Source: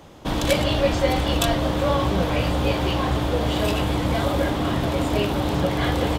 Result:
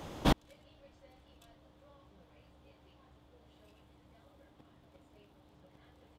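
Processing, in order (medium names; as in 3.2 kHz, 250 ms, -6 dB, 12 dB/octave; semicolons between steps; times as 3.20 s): inverted gate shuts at -15 dBFS, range -40 dB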